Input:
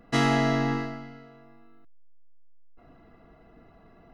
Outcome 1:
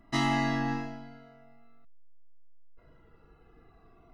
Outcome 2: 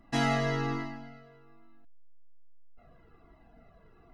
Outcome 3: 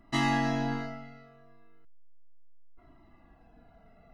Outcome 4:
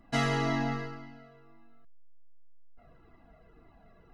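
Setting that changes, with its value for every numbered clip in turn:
cascading flanger, rate: 0.22, 1.2, 0.34, 1.9 Hz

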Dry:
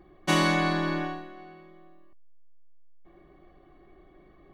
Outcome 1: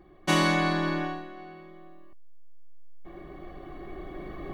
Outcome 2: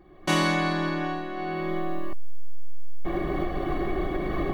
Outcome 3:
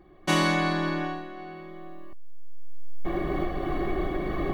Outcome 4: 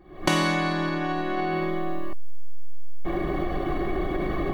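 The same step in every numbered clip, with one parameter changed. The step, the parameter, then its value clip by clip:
recorder AGC, rising by: 5, 32, 13, 88 dB/s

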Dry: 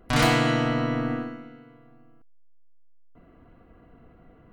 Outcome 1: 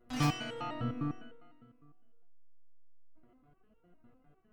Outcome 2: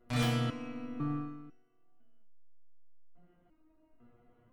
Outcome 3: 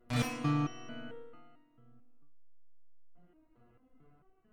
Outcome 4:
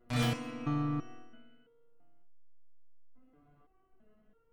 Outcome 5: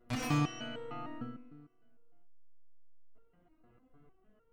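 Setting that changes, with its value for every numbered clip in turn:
stepped resonator, rate: 9.9, 2, 4.5, 3, 6.6 Hz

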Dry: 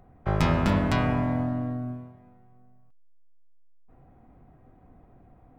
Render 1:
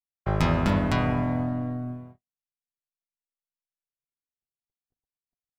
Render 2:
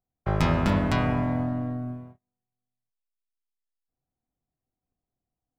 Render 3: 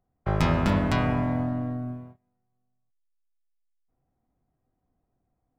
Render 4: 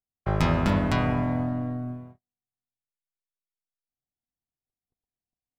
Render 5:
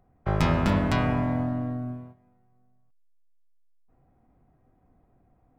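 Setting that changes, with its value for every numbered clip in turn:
gate, range: -58, -34, -22, -46, -9 dB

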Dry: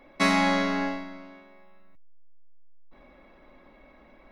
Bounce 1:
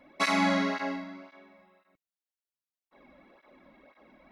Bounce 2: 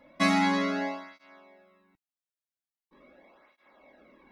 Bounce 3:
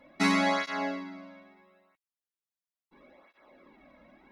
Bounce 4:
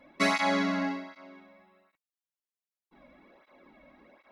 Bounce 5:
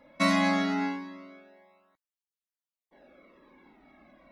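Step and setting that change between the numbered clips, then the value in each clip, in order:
tape flanging out of phase, nulls at: 1.9, 0.42, 0.75, 1.3, 0.22 Hz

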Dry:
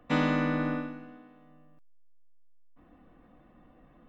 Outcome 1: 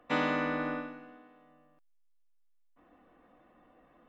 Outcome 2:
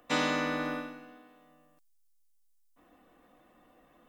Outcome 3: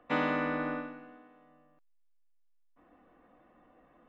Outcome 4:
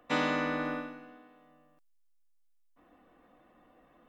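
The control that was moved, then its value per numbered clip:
tone controls, treble: -4, +14, -13, +4 dB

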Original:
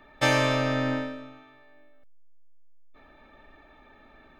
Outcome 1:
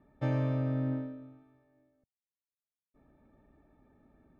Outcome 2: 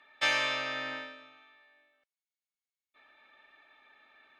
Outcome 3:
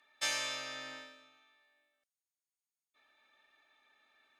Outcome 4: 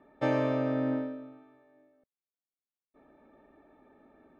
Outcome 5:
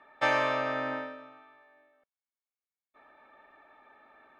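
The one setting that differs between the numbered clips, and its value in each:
band-pass, frequency: 130, 2900, 7600, 330, 1100 Hz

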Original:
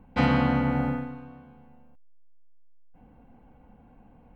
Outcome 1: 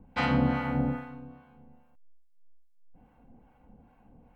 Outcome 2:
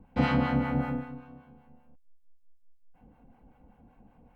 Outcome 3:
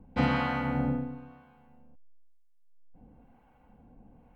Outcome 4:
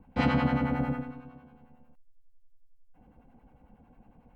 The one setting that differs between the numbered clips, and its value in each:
harmonic tremolo, rate: 2.4, 5.2, 1, 11 Hz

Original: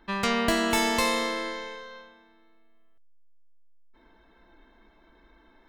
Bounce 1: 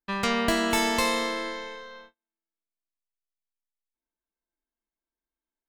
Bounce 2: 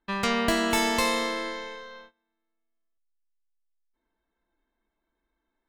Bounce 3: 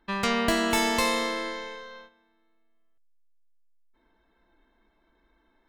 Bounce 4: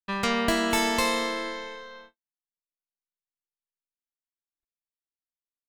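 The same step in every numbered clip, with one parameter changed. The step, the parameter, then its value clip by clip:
gate, range: -38, -22, -9, -56 dB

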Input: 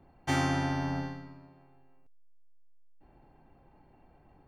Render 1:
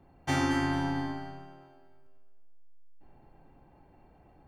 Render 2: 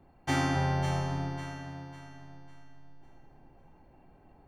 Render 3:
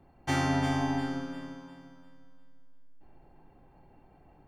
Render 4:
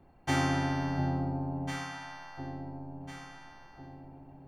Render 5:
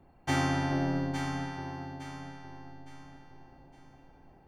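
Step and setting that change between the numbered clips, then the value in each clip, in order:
echo with dull and thin repeats by turns, time: 0.111, 0.275, 0.175, 0.7, 0.431 s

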